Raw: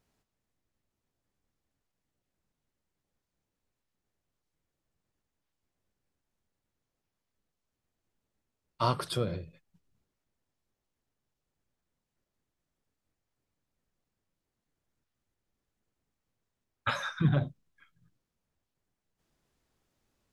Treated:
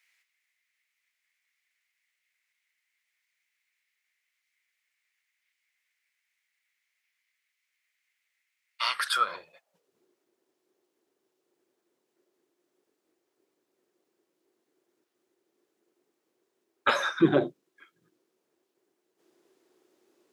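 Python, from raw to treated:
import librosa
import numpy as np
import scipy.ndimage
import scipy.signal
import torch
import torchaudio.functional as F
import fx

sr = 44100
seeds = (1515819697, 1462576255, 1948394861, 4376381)

y = fx.filter_sweep_highpass(x, sr, from_hz=2100.0, to_hz=360.0, start_s=8.91, end_s=9.99, q=6.2)
y = F.gain(torch.from_numpy(y), 6.0).numpy()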